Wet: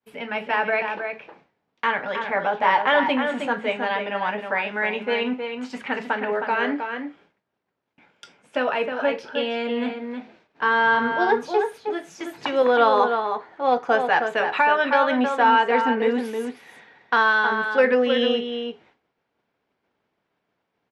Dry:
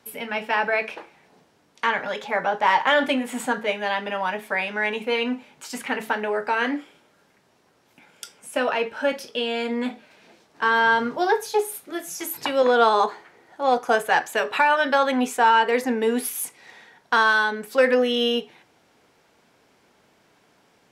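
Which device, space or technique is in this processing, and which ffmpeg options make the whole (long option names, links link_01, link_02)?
hearing-loss simulation: -filter_complex "[0:a]lowpass=3400,asplit=2[link_01][link_02];[link_02]adelay=314.9,volume=-6dB,highshelf=frequency=4000:gain=-7.08[link_03];[link_01][link_03]amix=inputs=2:normalize=0,agate=range=-33dB:threshold=-49dB:ratio=3:detection=peak"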